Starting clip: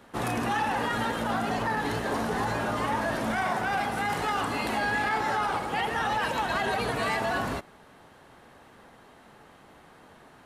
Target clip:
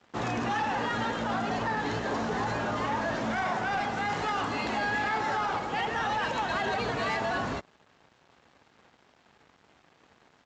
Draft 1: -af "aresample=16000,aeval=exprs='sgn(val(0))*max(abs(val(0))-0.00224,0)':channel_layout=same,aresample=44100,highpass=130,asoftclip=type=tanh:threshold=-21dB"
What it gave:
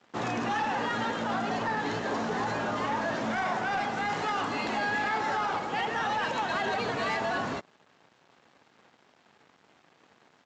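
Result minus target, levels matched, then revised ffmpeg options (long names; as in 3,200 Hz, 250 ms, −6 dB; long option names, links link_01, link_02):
125 Hz band −3.0 dB
-af "aresample=16000,aeval=exprs='sgn(val(0))*max(abs(val(0))-0.00224,0)':channel_layout=same,aresample=44100,highpass=51,asoftclip=type=tanh:threshold=-21dB"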